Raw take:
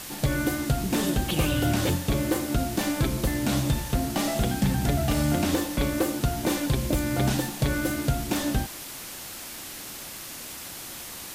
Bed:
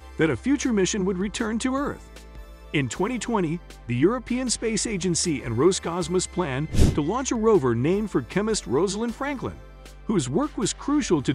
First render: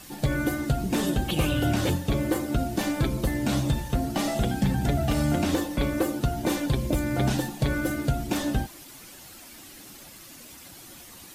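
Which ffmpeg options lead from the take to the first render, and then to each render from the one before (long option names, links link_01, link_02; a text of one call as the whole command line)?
ffmpeg -i in.wav -af "afftdn=noise_reduction=10:noise_floor=-39" out.wav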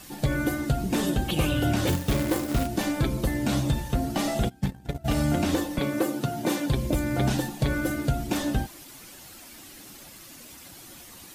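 ffmpeg -i in.wav -filter_complex "[0:a]asettb=1/sr,asplit=3[link_01][link_02][link_03];[link_01]atrim=end=1.874[link_04];[link_02]atrim=start=1.87:end=2.67,asetpts=PTS-STARTPTS,afade=type=in:duration=0.004:curve=qsin,afade=type=out:start_time=0.796:duration=0.004:curve=qsin,acrusher=bits=2:mode=log:mix=0:aa=0.000001[link_05];[link_03]atrim=start=2.666[link_06];[link_04][link_05]acrossfade=duration=0.004:curve1=hsin:curve2=qsin[link_07];[link_07][link_06]acrossfade=duration=0.004:curve1=qsin:curve2=hsin,asplit=3[link_08][link_09][link_10];[link_08]afade=type=out:start_time=4.48:duration=0.02[link_11];[link_09]agate=range=-24dB:threshold=-22dB:ratio=16:release=100:detection=peak,afade=type=in:start_time=4.48:duration=0.02,afade=type=out:start_time=5.04:duration=0.02[link_12];[link_10]afade=type=in:start_time=5.04:duration=0.02[link_13];[link_11][link_12][link_13]amix=inputs=3:normalize=0,asettb=1/sr,asplit=3[link_14][link_15][link_16];[link_14]atrim=end=5.794[link_17];[link_15]atrim=start=5.79:end=6.69,asetpts=PTS-STARTPTS,afade=type=in:duration=0.004:curve=qsin,afade=type=out:start_time=0.896:duration=0.004:curve=qsin,highpass=frequency=120:width=0.5412,highpass=frequency=120:width=1.3066[link_18];[link_16]atrim=start=6.686[link_19];[link_17][link_18]acrossfade=duration=0.004:curve1=hsin:curve2=qsin[link_20];[link_20][link_19]acrossfade=duration=0.004:curve1=qsin:curve2=hsin" out.wav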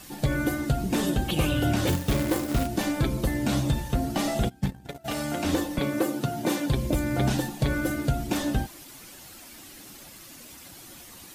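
ffmpeg -i in.wav -filter_complex "[0:a]asettb=1/sr,asplit=3[link_01][link_02][link_03];[link_01]atrim=end=4.874[link_04];[link_02]atrim=start=4.87:end=5.45,asetpts=PTS-STARTPTS,afade=type=in:duration=0.004:curve=qsin,afade=type=out:start_time=0.576:duration=0.004:curve=qsin,highpass=frequency=480:poles=1[link_05];[link_03]atrim=start=5.446[link_06];[link_04][link_05]acrossfade=duration=0.004:curve1=hsin:curve2=qsin[link_07];[link_07][link_06]acrossfade=duration=0.004:curve1=qsin:curve2=hsin" out.wav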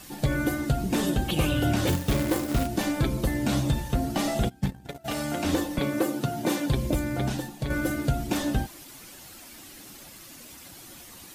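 ffmpeg -i in.wav -filter_complex "[0:a]asplit=2[link_01][link_02];[link_01]atrim=end=7.7,asetpts=PTS-STARTPTS,afade=type=out:start_time=6.89:duration=0.81:curve=qua:silence=0.501187[link_03];[link_02]atrim=start=7.7,asetpts=PTS-STARTPTS,afade=type=in:duration=0.004:curve=hsin:silence=0.501187[link_04];[link_03][link_04]concat=n=2:v=0:a=1" out.wav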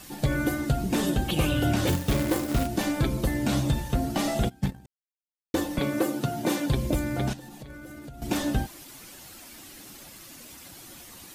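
ffmpeg -i in.wav -filter_complex "[0:a]asettb=1/sr,asplit=3[link_01][link_02][link_03];[link_01]atrim=end=7.334[link_04];[link_02]atrim=start=7.33:end=8.22,asetpts=PTS-STARTPTS,afade=type=in:duration=0.004:curve=qsin,afade=type=out:start_time=0.886:duration=0.004:curve=qsin,acompressor=threshold=-38dB:ratio=20:attack=3.2:release=140:knee=1:detection=peak[link_05];[link_03]atrim=start=8.216[link_06];[link_04][link_05]acrossfade=duration=0.004:curve1=hsin:curve2=qsin[link_07];[link_07][link_06]acrossfade=duration=0.004:curve1=qsin:curve2=hsin,asplit=3[link_08][link_09][link_10];[link_08]atrim=end=4.86,asetpts=PTS-STARTPTS,afade=type=out:start_time=4.856:duration=0.004:curve=hsin[link_11];[link_09]atrim=start=4.86:end=5.54,asetpts=PTS-STARTPTS,volume=0[link_12];[link_10]atrim=start=5.54,asetpts=PTS-STARTPTS,afade=type=in:duration=0.004:curve=hsin[link_13];[link_11][link_12][link_13]concat=n=3:v=0:a=1" out.wav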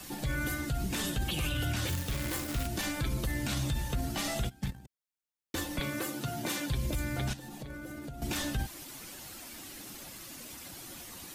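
ffmpeg -i in.wav -filter_complex "[0:a]acrossover=split=120|1200[link_01][link_02][link_03];[link_02]acompressor=threshold=-36dB:ratio=6[link_04];[link_01][link_04][link_03]amix=inputs=3:normalize=0,alimiter=limit=-23.5dB:level=0:latency=1:release=28" out.wav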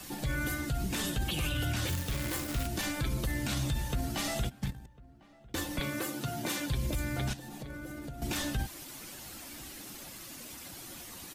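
ffmpeg -i in.wav -filter_complex "[0:a]asplit=2[link_01][link_02];[link_02]adelay=1050,volume=-22dB,highshelf=frequency=4000:gain=-23.6[link_03];[link_01][link_03]amix=inputs=2:normalize=0" out.wav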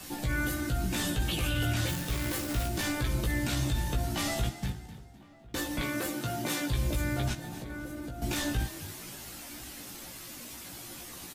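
ffmpeg -i in.wav -filter_complex "[0:a]asplit=2[link_01][link_02];[link_02]adelay=17,volume=-4dB[link_03];[link_01][link_03]amix=inputs=2:normalize=0,asplit=4[link_04][link_05][link_06][link_07];[link_05]adelay=255,afreqshift=38,volume=-14.5dB[link_08];[link_06]adelay=510,afreqshift=76,volume=-23.4dB[link_09];[link_07]adelay=765,afreqshift=114,volume=-32.2dB[link_10];[link_04][link_08][link_09][link_10]amix=inputs=4:normalize=0" out.wav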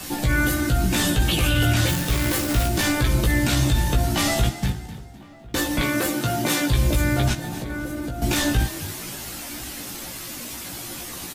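ffmpeg -i in.wav -af "volume=10dB" out.wav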